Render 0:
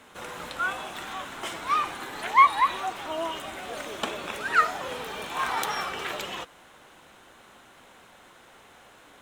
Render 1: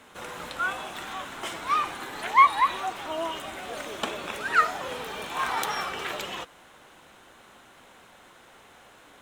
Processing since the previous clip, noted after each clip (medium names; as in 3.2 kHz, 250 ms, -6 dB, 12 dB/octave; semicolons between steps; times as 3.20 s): no audible change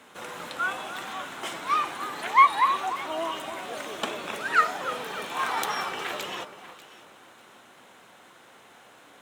high-pass 130 Hz 12 dB/octave; on a send: echo whose repeats swap between lows and highs 296 ms, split 1.4 kHz, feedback 51%, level -10.5 dB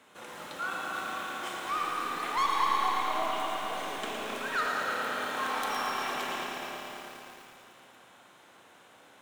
saturation -18.5 dBFS, distortion -9 dB; Schroeder reverb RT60 3.9 s, combs from 28 ms, DRR 0 dB; bit-crushed delay 112 ms, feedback 80%, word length 7-bit, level -7 dB; trim -7 dB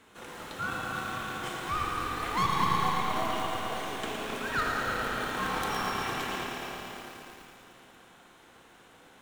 in parallel at -8 dB: sample-and-hold 35×; on the sum: band-stop 590 Hz, Q 12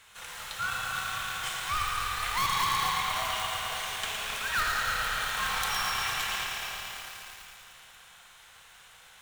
amplifier tone stack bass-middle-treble 10-0-10; in parallel at -5.5 dB: integer overflow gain 28.5 dB; on the sum: trim +5 dB